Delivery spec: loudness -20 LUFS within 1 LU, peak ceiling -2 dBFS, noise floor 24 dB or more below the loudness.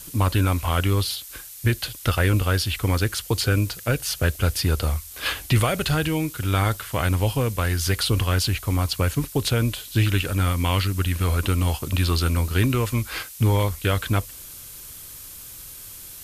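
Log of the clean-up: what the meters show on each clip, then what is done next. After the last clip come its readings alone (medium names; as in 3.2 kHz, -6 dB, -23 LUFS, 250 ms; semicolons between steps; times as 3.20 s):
dropouts 1; longest dropout 2.3 ms; noise floor -40 dBFS; noise floor target -47 dBFS; loudness -23.0 LUFS; peak level -10.5 dBFS; loudness target -20.0 LUFS
-> interpolate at 12.48 s, 2.3 ms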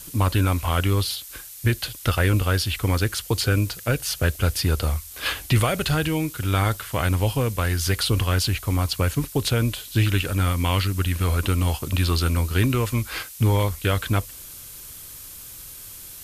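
dropouts 0; noise floor -40 dBFS; noise floor target -47 dBFS
-> noise print and reduce 7 dB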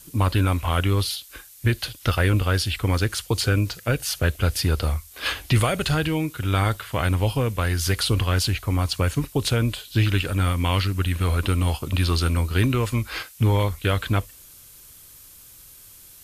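noise floor -47 dBFS; noise floor target -48 dBFS
-> noise print and reduce 6 dB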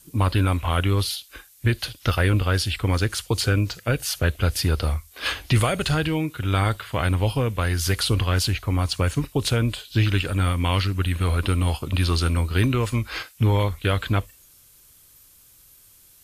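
noise floor -53 dBFS; loudness -23.5 LUFS; peak level -10.5 dBFS; loudness target -20.0 LUFS
-> trim +3.5 dB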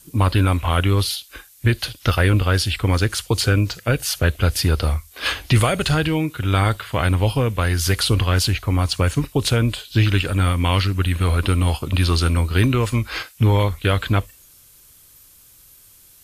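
loudness -20.0 LUFS; peak level -7.0 dBFS; noise floor -50 dBFS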